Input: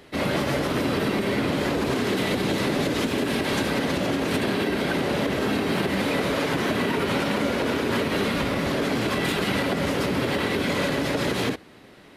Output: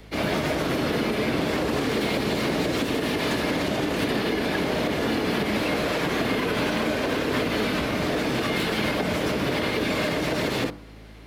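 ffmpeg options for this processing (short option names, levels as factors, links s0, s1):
-filter_complex "[0:a]aeval=exprs='val(0)+0.00631*(sin(2*PI*50*n/s)+sin(2*PI*2*50*n/s)/2+sin(2*PI*3*50*n/s)/3+sin(2*PI*4*50*n/s)/4+sin(2*PI*5*50*n/s)/5)':c=same,bandreject=f=45.72:t=h:w=4,bandreject=f=91.44:t=h:w=4,bandreject=f=137.16:t=h:w=4,bandreject=f=182.88:t=h:w=4,bandreject=f=228.6:t=h:w=4,bandreject=f=274.32:t=h:w=4,bandreject=f=320.04:t=h:w=4,bandreject=f=365.76:t=h:w=4,bandreject=f=411.48:t=h:w=4,bandreject=f=457.2:t=h:w=4,bandreject=f=502.92:t=h:w=4,bandreject=f=548.64:t=h:w=4,bandreject=f=594.36:t=h:w=4,bandreject=f=640.08:t=h:w=4,bandreject=f=685.8:t=h:w=4,bandreject=f=731.52:t=h:w=4,bandreject=f=777.24:t=h:w=4,bandreject=f=822.96:t=h:w=4,bandreject=f=868.68:t=h:w=4,bandreject=f=914.4:t=h:w=4,bandreject=f=960.12:t=h:w=4,bandreject=f=1005.84:t=h:w=4,bandreject=f=1051.56:t=h:w=4,bandreject=f=1097.28:t=h:w=4,bandreject=f=1143:t=h:w=4,bandreject=f=1188.72:t=h:w=4,bandreject=f=1234.44:t=h:w=4,bandreject=f=1280.16:t=h:w=4,bandreject=f=1325.88:t=h:w=4,bandreject=f=1371.6:t=h:w=4,asetrate=47628,aresample=44100,acrossover=split=190|830|4500[s0][s1][s2][s3];[s3]asoftclip=type=tanh:threshold=0.0141[s4];[s0][s1][s2][s4]amix=inputs=4:normalize=0"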